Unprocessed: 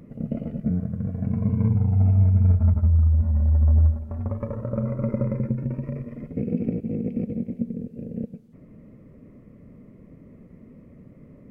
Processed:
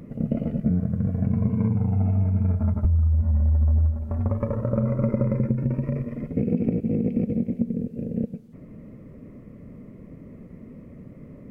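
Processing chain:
0:01.47–0:02.85: high-pass filter 130 Hz 12 dB per octave
downward compressor 6 to 1, threshold −22 dBFS, peak gain reduction 8.5 dB
level +4.5 dB

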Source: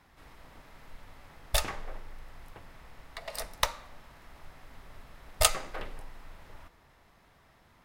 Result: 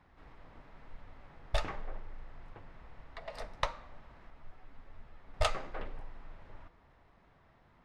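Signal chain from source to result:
flanger 1 Hz, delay 0.9 ms, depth 9 ms, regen −66%
head-to-tape spacing loss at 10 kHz 24 dB
0:04.30–0:05.34: string-ensemble chorus
level +3.5 dB

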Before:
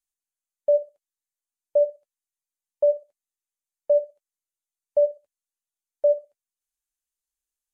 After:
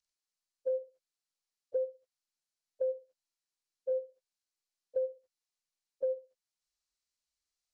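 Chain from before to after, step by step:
partials spread apart or drawn together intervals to 86%
downward compressor 4 to 1, threshold −33 dBFS, peak gain reduction 14.5 dB

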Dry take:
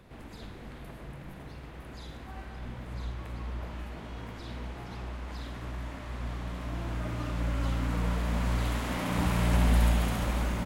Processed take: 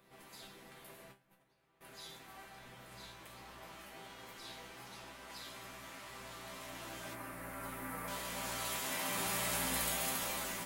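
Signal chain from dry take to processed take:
RIAA equalisation recording
0:01.12–0:01.81: noise gate −45 dBFS, range −18 dB
0:07.13–0:08.08: flat-topped bell 4,600 Hz −13 dB
resonators tuned to a chord C3 major, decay 0.25 s
one half of a high-frequency compander decoder only
level +7.5 dB

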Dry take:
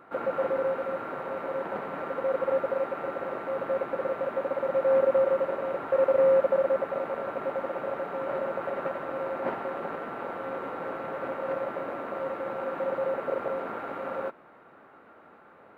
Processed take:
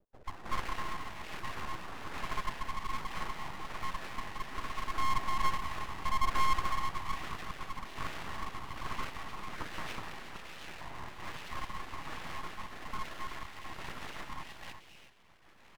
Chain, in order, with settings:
time-frequency cells dropped at random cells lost 24%
0:10.23–0:10.66: phaser with its sweep stopped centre 2,900 Hz, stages 8
0:12.95–0:13.63: low-shelf EQ 430 Hz −12 dB
three-band delay without the direct sound lows, mids, highs 130/420 ms, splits 270/1,100 Hz
rotating-speaker cabinet horn 1.2 Hz
0:06.57–0:07.77: high-pass filter 180 Hz 24 dB per octave
reverb whose tail is shaped and stops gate 390 ms rising, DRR 6.5 dB
full-wave rectification
high-shelf EQ 3,100 Hz +10 dB
level −2 dB

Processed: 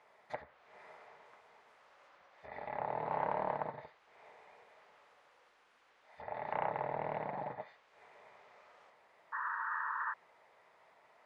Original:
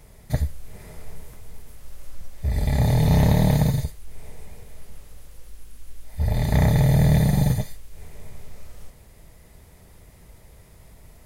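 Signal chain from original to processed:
sound drawn into the spectrogram noise, 0:09.32–0:10.14, 880–1,900 Hz −35 dBFS
treble cut that deepens with the level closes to 1,300 Hz, closed at −16.5 dBFS
four-pole ladder band-pass 1,200 Hz, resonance 20%
highs frequency-modulated by the lows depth 0.26 ms
level +8 dB

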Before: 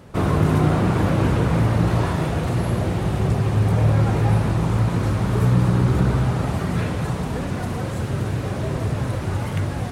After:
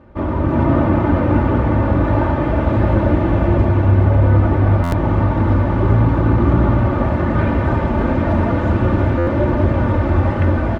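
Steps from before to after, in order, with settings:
low-pass filter 1,900 Hz 12 dB per octave
comb filter 3.1 ms, depth 63%
echo with a time of its own for lows and highs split 380 Hz, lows 83 ms, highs 346 ms, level −10 dB
automatic gain control gain up to 11.5 dB
wrong playback speed 48 kHz file played as 44.1 kHz
buffer that repeats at 0:04.83/0:09.18, samples 512, times 7
level −1 dB

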